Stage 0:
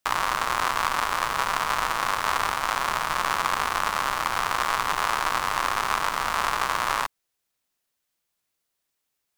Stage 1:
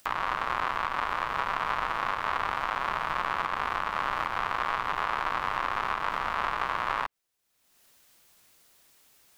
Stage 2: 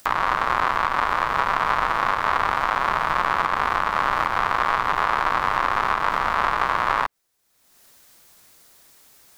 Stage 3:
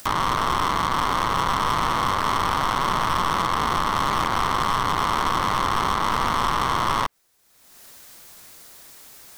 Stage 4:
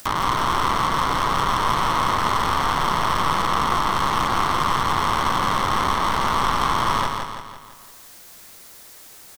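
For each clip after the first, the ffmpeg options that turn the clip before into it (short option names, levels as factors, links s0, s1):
-filter_complex "[0:a]acrossover=split=3500[s0][s1];[s1]acompressor=threshold=0.00282:ratio=4:attack=1:release=60[s2];[s0][s2]amix=inputs=2:normalize=0,alimiter=limit=0.188:level=0:latency=1:release=294,acompressor=mode=upward:threshold=0.00708:ratio=2.5,volume=0.891"
-af "equalizer=f=2800:w=2.2:g=-4,volume=2.66"
-af "aeval=exprs='(tanh(17.8*val(0)+0.4)-tanh(0.4))/17.8':c=same,volume=2.66"
-af "aecho=1:1:168|336|504|672|840|1008:0.562|0.287|0.146|0.0746|0.038|0.0194"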